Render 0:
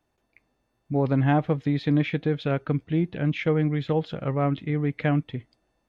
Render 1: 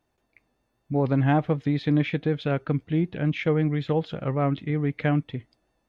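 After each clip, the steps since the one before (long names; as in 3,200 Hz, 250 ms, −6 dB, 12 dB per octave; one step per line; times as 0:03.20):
pitch vibrato 5.3 Hz 34 cents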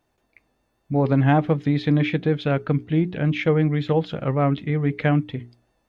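mains-hum notches 60/120/180/240/300/360/420 Hz
level +4 dB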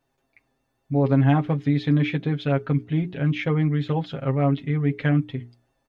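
comb filter 7.4 ms, depth 75%
level −4.5 dB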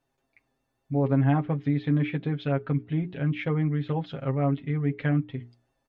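treble cut that deepens with the level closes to 2,500 Hz, closed at −19 dBFS
level −4 dB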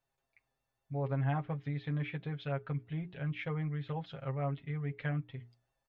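parametric band 280 Hz −11.5 dB 1 octave
level −6.5 dB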